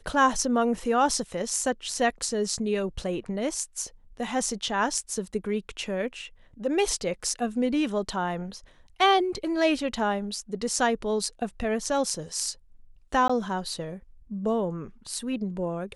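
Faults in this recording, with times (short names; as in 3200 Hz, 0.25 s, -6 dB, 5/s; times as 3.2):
13.28–13.29 gap 15 ms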